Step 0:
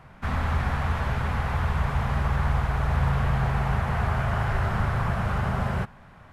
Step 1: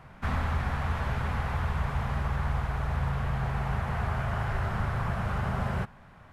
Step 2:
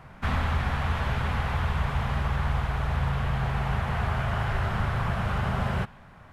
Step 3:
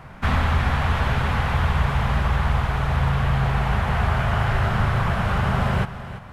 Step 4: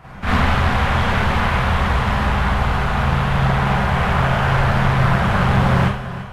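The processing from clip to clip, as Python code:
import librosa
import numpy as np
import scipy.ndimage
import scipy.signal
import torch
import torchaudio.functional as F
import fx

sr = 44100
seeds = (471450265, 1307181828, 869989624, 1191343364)

y1 = fx.rider(x, sr, range_db=10, speed_s=0.5)
y1 = y1 * 10.0 ** (-4.5 / 20.0)
y2 = fx.dynamic_eq(y1, sr, hz=3200.0, q=1.5, threshold_db=-58.0, ratio=4.0, max_db=5)
y2 = y2 * 10.0 ** (2.5 / 20.0)
y3 = fx.echo_feedback(y2, sr, ms=339, feedback_pct=32, wet_db=-13.5)
y3 = y3 * 10.0 ** (6.0 / 20.0)
y4 = fx.rev_schroeder(y3, sr, rt60_s=0.52, comb_ms=31, drr_db=-8.0)
y4 = fx.doppler_dist(y4, sr, depth_ms=0.38)
y4 = y4 * 10.0 ** (-2.5 / 20.0)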